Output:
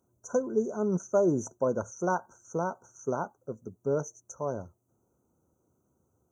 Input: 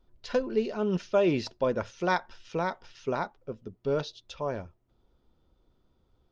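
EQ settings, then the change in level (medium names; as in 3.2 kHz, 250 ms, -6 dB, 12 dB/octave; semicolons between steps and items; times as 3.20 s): high-pass 87 Hz 24 dB/octave; brick-wall FIR band-stop 1.6–5.8 kHz; resonant high shelf 2.4 kHz +9.5 dB, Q 3; 0.0 dB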